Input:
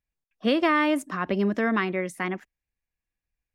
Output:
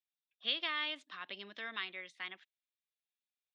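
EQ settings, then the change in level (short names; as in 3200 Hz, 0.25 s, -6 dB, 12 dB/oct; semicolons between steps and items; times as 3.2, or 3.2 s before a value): band-pass 3600 Hz, Q 5.2; air absorption 120 m; +6.5 dB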